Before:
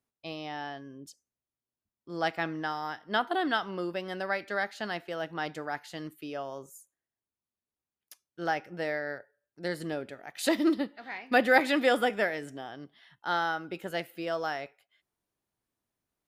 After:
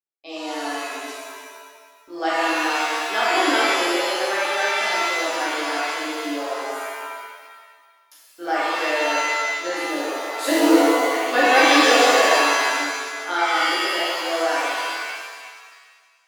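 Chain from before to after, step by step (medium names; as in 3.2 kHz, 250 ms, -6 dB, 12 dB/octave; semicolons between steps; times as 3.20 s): Chebyshev high-pass 290 Hz, order 4; gate with hold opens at -50 dBFS; pitch-shifted reverb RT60 1.6 s, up +7 st, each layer -2 dB, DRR -8 dB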